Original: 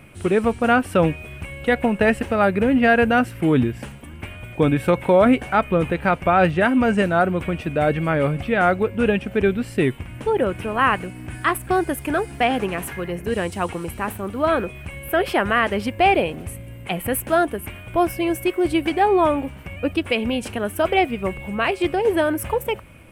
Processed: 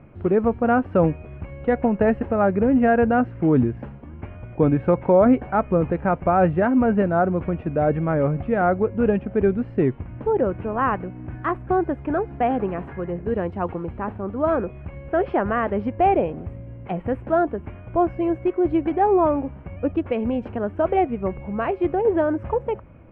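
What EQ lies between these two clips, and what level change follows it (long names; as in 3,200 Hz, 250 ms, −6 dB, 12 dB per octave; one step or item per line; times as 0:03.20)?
low-pass filter 1,100 Hz 12 dB per octave
high-frequency loss of the air 90 metres
0.0 dB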